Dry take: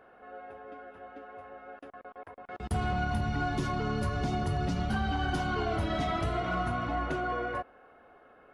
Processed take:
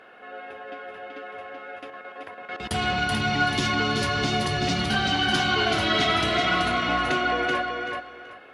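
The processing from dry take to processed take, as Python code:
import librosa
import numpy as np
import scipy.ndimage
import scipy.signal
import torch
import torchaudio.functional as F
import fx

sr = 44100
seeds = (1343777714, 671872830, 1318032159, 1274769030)

p1 = fx.weighting(x, sr, curve='D')
p2 = p1 + fx.echo_feedback(p1, sr, ms=381, feedback_pct=22, wet_db=-4.5, dry=0)
y = p2 * 10.0 ** (6.0 / 20.0)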